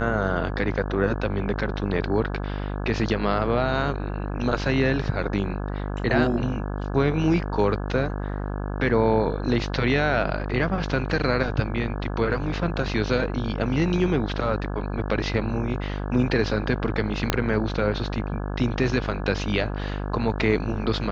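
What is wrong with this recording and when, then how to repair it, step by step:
buzz 50 Hz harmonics 34 -29 dBFS
17.30 s: pop -5 dBFS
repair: de-click; de-hum 50 Hz, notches 34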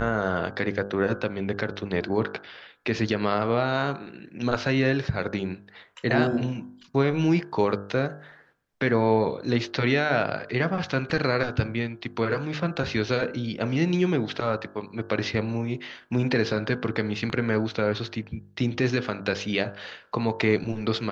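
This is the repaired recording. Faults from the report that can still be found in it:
17.30 s: pop

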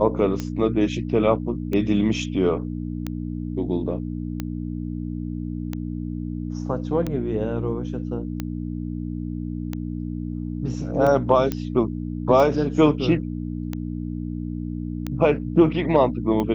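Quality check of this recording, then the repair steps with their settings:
hum 60 Hz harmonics 5 -29 dBFS
tick 45 rpm -14 dBFS
11.52 s: pop -11 dBFS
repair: de-click; de-hum 60 Hz, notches 5

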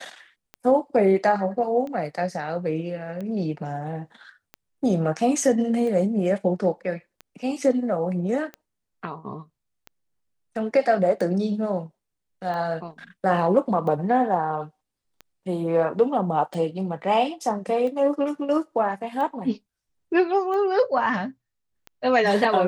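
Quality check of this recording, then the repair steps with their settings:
tick 45 rpm -23 dBFS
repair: de-click

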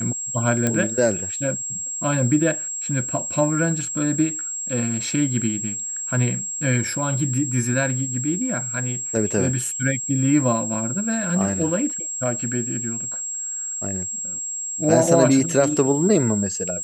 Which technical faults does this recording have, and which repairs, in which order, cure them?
whine 7.6 kHz -26 dBFS
0.67 s: pop -7 dBFS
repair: de-click; band-stop 7.6 kHz, Q 30

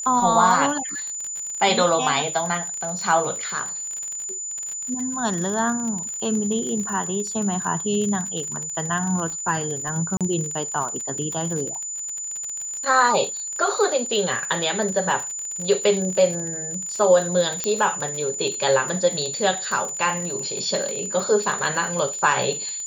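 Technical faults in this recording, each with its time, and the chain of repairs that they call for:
crackle 42 per s -27 dBFS
whine 7 kHz -28 dBFS
10.17–10.21 s: dropout 37 ms
17.64 s: pop -8 dBFS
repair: de-click; band-stop 7 kHz, Q 30; interpolate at 10.17 s, 37 ms

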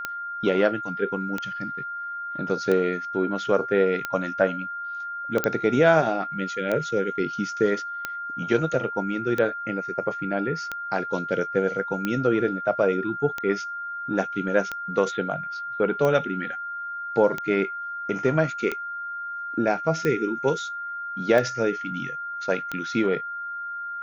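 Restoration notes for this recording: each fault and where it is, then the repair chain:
tick 45 rpm -13 dBFS
whine 1.4 kHz -30 dBFS
5.44 s: pop -8 dBFS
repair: de-click; band-stop 1.4 kHz, Q 30

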